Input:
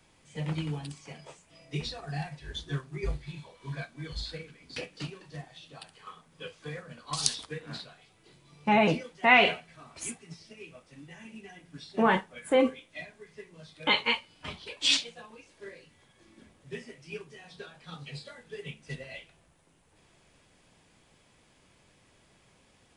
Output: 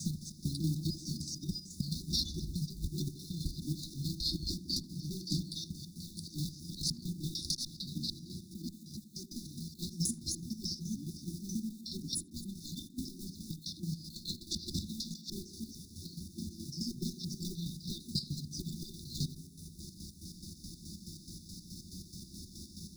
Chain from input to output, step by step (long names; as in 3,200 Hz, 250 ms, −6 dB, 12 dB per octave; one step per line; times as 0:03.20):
slices reordered back to front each 150 ms, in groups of 3
dynamic equaliser 140 Hz, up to −5 dB, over −48 dBFS, Q 1.3
compressor whose output falls as the input rises −37 dBFS, ratio −0.5
EQ curve with evenly spaced ripples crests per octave 0.83, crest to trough 11 dB
tube saturation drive 29 dB, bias 0.25
log-companded quantiser 6 bits
square-wave tremolo 4.7 Hz, depth 60%, duty 50%
linear-phase brick-wall band-stop 360–3,500 Hz
tape delay 78 ms, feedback 80%, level −12 dB, low-pass 1,000 Hz
multiband upward and downward compressor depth 40%
level +8.5 dB